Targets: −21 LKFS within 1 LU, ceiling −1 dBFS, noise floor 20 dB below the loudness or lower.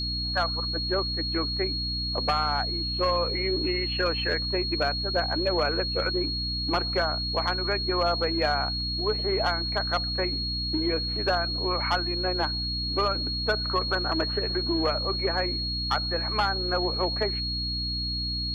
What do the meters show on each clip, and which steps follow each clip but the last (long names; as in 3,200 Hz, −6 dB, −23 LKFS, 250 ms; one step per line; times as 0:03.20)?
mains hum 60 Hz; hum harmonics up to 300 Hz; level of the hum −31 dBFS; interfering tone 4,300 Hz; level of the tone −29 dBFS; integrated loudness −26.0 LKFS; sample peak −13.5 dBFS; target loudness −21.0 LKFS
→ mains-hum notches 60/120/180/240/300 Hz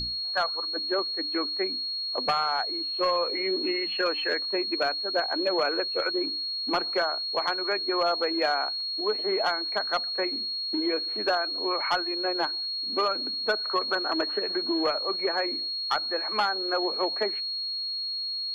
mains hum none found; interfering tone 4,300 Hz; level of the tone −29 dBFS
→ notch filter 4,300 Hz, Q 30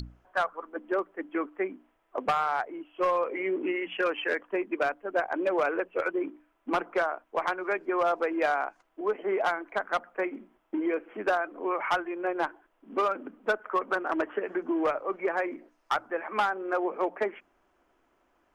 interfering tone none found; integrated loudness −30.0 LKFS; sample peak −16.5 dBFS; target loudness −21.0 LKFS
→ level +9 dB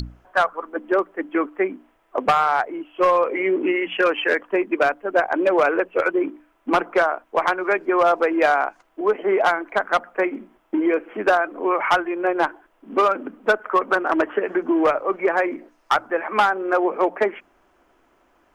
integrated loudness −21.0 LKFS; sample peak −7.5 dBFS; background noise floor −62 dBFS